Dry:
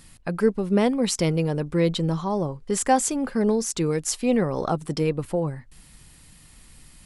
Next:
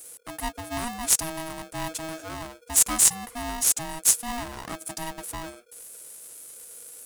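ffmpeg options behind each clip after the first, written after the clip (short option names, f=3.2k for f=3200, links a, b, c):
-af "aexciter=amount=15:drive=3.8:freq=6.3k,aeval=exprs='val(0)*sgn(sin(2*PI*480*n/s))':c=same,volume=-11.5dB"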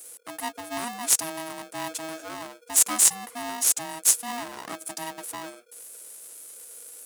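-af "highpass=240"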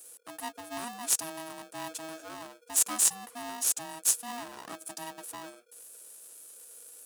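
-af "bandreject=f=2.1k:w=9.9,volume=-6dB"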